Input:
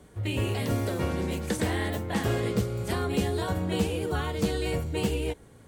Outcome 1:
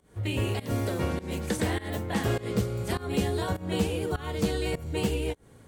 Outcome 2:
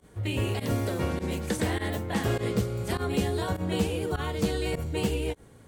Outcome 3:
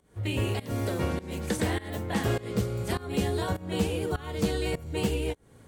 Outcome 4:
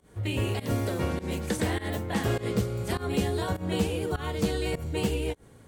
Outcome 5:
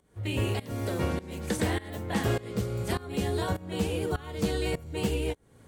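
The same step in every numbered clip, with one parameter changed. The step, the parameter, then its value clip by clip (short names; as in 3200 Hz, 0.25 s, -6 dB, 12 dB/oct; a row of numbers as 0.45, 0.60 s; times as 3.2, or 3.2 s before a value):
pump, release: 221, 70, 324, 141, 481 ms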